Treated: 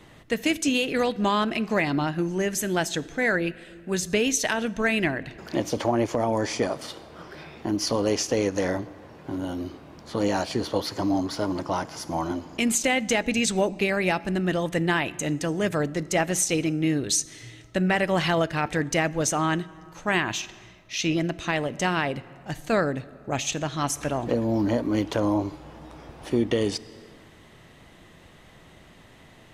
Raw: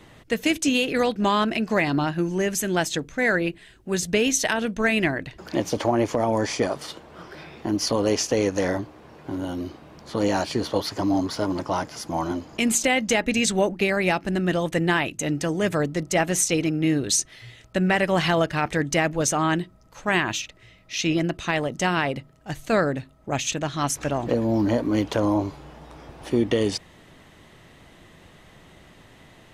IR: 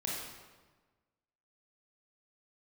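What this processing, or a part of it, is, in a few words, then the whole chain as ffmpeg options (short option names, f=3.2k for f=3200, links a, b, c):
compressed reverb return: -filter_complex "[0:a]asplit=2[a][b];[1:a]atrim=start_sample=2205[c];[b][c]afir=irnorm=-1:irlink=0,acompressor=threshold=-24dB:ratio=5,volume=-13.5dB[d];[a][d]amix=inputs=2:normalize=0,volume=-2.5dB"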